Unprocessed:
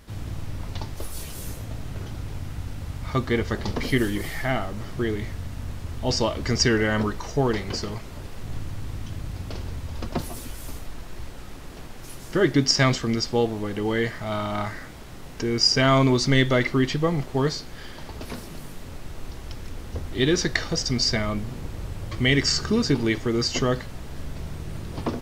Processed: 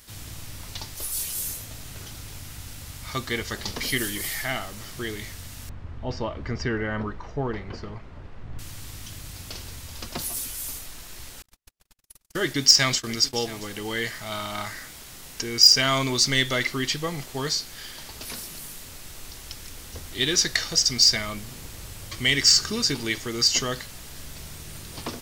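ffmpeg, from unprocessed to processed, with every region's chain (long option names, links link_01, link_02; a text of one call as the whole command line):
ffmpeg -i in.wav -filter_complex "[0:a]asettb=1/sr,asplit=3[link_01][link_02][link_03];[link_01]atrim=end=5.694[link_04];[link_02]atrim=start=5.69:end=8.59,asetpts=PTS-STARTPTS,afade=type=in:duration=0.004:curve=qsin,afade=type=out:start_time=2.896:duration=0.004:curve=qsin,lowpass=1400,lowshelf=frequency=210:gain=4.5[link_05];[link_03]atrim=start=8.586[link_06];[link_04][link_05]acrossfade=duration=0.004:curve1=hsin:curve2=qsin[link_07];[link_07][link_06]acrossfade=duration=0.004:curve1=qsin:curve2=hsin,asettb=1/sr,asplit=3[link_08][link_09][link_10];[link_08]atrim=end=11.424[link_11];[link_09]atrim=start=11.42:end=13.7,asetpts=PTS-STARTPTS,afade=type=in:duration=0.004:curve=qsin,afade=type=out:start_time=2.276:duration=0.004:curve=qsin,agate=range=-52dB:threshold=-33dB:ratio=16:release=100:detection=peak,aecho=1:1:678:0.112,atrim=end_sample=100548[link_12];[link_10]atrim=start=13.696[link_13];[link_11][link_12]acrossfade=duration=0.004:curve1=hsin:curve2=qsin[link_14];[link_14][link_13]acrossfade=duration=0.004:curve1=qsin:curve2=hsin,tiltshelf=frequency=1300:gain=-6,acontrast=33,highshelf=frequency=5300:gain=10,volume=-8dB" out.wav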